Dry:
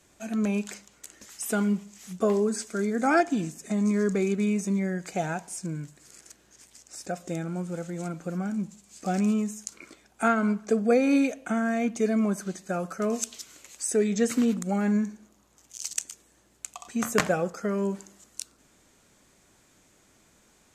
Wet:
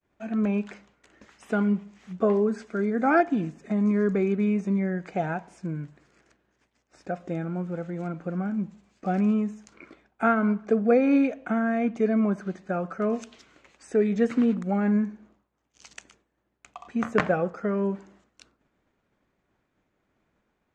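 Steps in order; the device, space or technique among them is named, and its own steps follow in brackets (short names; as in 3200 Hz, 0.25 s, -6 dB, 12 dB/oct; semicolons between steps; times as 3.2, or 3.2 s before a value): hearing-loss simulation (LPF 2200 Hz 12 dB/oct; expander -55 dBFS); gain +1.5 dB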